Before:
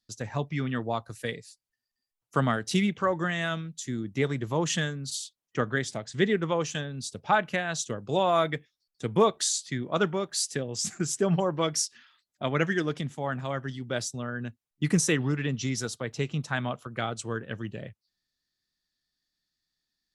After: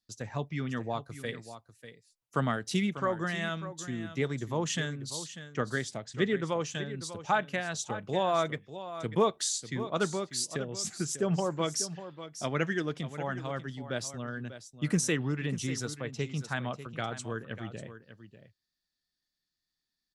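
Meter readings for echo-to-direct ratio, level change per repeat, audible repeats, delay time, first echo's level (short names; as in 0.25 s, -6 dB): -12.5 dB, no steady repeat, 1, 0.594 s, -12.5 dB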